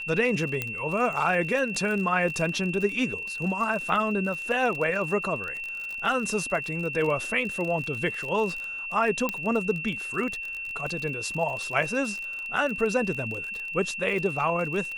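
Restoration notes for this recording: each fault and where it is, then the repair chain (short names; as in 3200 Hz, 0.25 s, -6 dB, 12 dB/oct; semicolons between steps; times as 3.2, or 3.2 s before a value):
crackle 35/s -31 dBFS
tone 2700 Hz -32 dBFS
0.62 pop -13 dBFS
9.29 pop -12 dBFS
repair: de-click; notch 2700 Hz, Q 30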